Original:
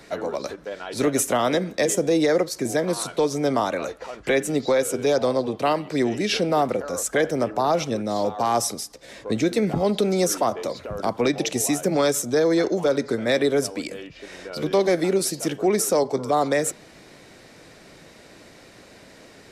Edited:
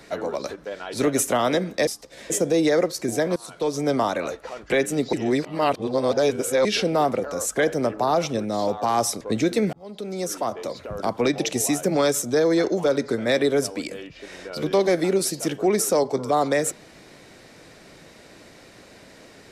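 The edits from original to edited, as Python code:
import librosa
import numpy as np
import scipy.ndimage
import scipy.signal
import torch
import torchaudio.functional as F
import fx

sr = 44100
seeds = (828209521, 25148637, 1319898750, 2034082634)

y = fx.edit(x, sr, fx.fade_in_from(start_s=2.93, length_s=0.45, floor_db=-19.5),
    fx.reverse_span(start_s=4.7, length_s=1.52),
    fx.move(start_s=8.78, length_s=0.43, to_s=1.87),
    fx.fade_in_span(start_s=9.73, length_s=1.71, curve='qsin'), tone=tone)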